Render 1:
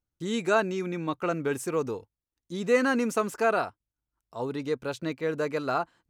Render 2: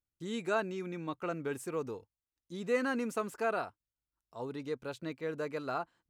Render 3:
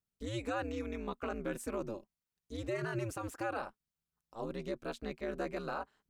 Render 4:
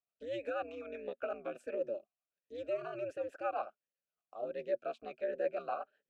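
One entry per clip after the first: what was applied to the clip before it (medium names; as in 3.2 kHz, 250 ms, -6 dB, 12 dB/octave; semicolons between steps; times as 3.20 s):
dynamic bell 6 kHz, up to -4 dB, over -55 dBFS, Q 3; trim -8 dB
peak limiter -29 dBFS, peak gain reduction 8.5 dB; ring modulator 110 Hz; trim +3 dB
rotary cabinet horn 8 Hz; talking filter a-e 1.4 Hz; trim +12 dB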